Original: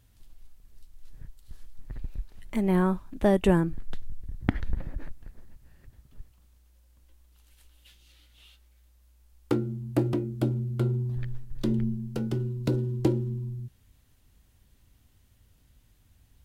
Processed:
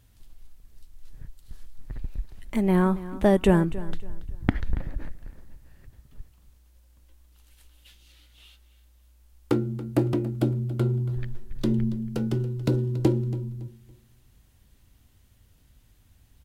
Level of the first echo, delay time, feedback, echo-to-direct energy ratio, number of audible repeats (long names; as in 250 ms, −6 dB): −16.5 dB, 280 ms, 29%, −16.0 dB, 2